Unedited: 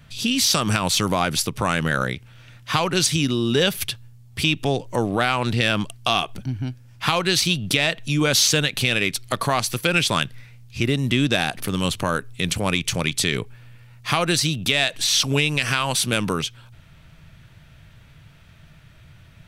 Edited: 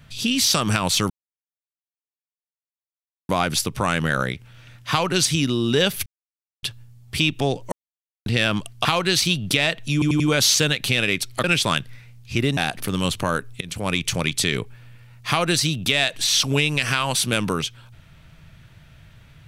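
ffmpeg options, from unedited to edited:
-filter_complex "[0:a]asplit=12[a][b][c][d][e][f][g][h][i][j][k][l];[a]atrim=end=1.1,asetpts=PTS-STARTPTS,afade=t=out:st=1.096:d=0.004:c=hsin,apad=pad_dur=2.19[m];[b]atrim=start=1.1:end=3.87,asetpts=PTS-STARTPTS,afade=t=in:d=0.004:c=hsin,afade=t=out:st=2.766:d=0.004:c=hsin,apad=pad_dur=0.57[n];[c]atrim=start=3.87:end=4.96,asetpts=PTS-STARTPTS,afade=t=in:d=0.004:c=hsin,afade=t=out:st=1.086:d=0.004:c=hsin[o];[d]atrim=start=4.96:end=5.5,asetpts=PTS-STARTPTS,volume=0[p];[e]atrim=start=5.5:end=6.092,asetpts=PTS-STARTPTS,afade=t=in:d=0.004:c=hsin[q];[f]atrim=start=7.048:end=8.222[r];[g]atrim=start=8.128:end=8.222[s];[h]atrim=start=8.128:end=8.222[t];[i]atrim=start=8.128:end=9.372[u];[j]atrim=start=9.888:end=11.022[v];[k]atrim=start=11.368:end=12.41,asetpts=PTS-STARTPTS,afade=t=out:st=1.038:d=0.004:c=hsin:silence=0.0944061[w];[l]atrim=start=12.41,asetpts=PTS-STARTPTS,afade=t=in:d=0.48:c=qsin:silence=0.0944061[x];[m][n][o][p][q]concat=n=5:v=0:a=1[y];[y][r]acrossfade=d=0.004:c1=hsin:c2=hsin[z];[z][s]acrossfade=d=0.004:c1=hsin:c2=hsin[aa];[aa][t]acrossfade=d=0.004:c1=hsin:c2=hsin[ab];[ab][u]acrossfade=d=0.004:c1=hsin:c2=hsin[ac];[ac][v]acrossfade=d=0.004:c1=hsin:c2=hsin[ad];[w][x]concat=n=2:v=0:a=1[ae];[ad][ae]acrossfade=d=0.004:c1=hsin:c2=hsin"

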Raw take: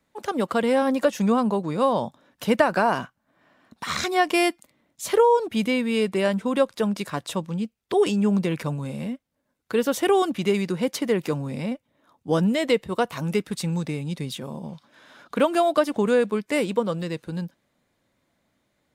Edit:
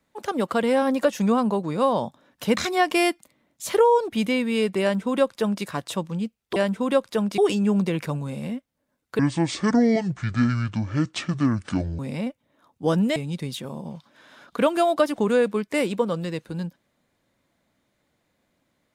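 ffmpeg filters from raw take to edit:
-filter_complex "[0:a]asplit=7[a][b][c][d][e][f][g];[a]atrim=end=2.572[h];[b]atrim=start=3.958:end=7.952[i];[c]atrim=start=6.208:end=7.032[j];[d]atrim=start=7.948:end=9.764[k];[e]atrim=start=9.76:end=11.44,asetpts=PTS-STARTPTS,asetrate=26460,aresample=44100[l];[f]atrim=start=11.436:end=12.612[m];[g]atrim=start=13.938[n];[h][i]acrossfade=d=0.004:c1=hsin:c2=hsin[o];[o][j]acrossfade=d=0.004:c1=hsin:c2=hsin[p];[p][k]acrossfade=d=0.004:c1=hsin:c2=hsin[q];[q][l]acrossfade=d=0.004:c1=hsin:c2=hsin[r];[r][m]acrossfade=d=0.004:c1=hsin:c2=hsin[s];[s][n]acrossfade=d=0.004:c1=hsin:c2=hsin"

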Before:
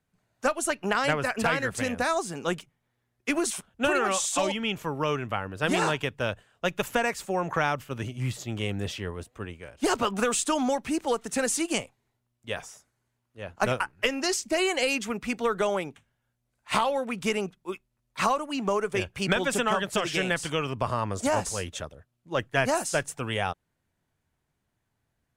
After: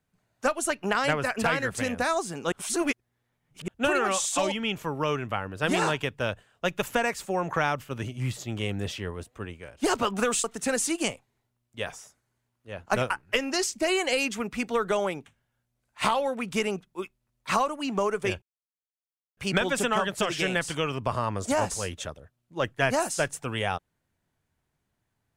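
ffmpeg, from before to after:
-filter_complex "[0:a]asplit=5[a][b][c][d][e];[a]atrim=end=2.522[f];[b]atrim=start=2.518:end=3.682,asetpts=PTS-STARTPTS,areverse[g];[c]atrim=start=3.678:end=10.442[h];[d]atrim=start=11.138:end=19.12,asetpts=PTS-STARTPTS,afade=t=out:st=7.978:d=0.004:c=hsin,apad=pad_dur=0.95[i];[e]atrim=start=19.12,asetpts=PTS-STARTPTS,afade=t=in:d=0.004:c=hsin[j];[f][g]acrossfade=d=0.004:c1=hsin:c2=hsin[k];[k][h]acrossfade=d=0.004:c1=hsin:c2=hsin[l];[i][j]concat=n=2:v=0:a=1[m];[l][m]acrossfade=d=0.004:c1=hsin:c2=hsin"

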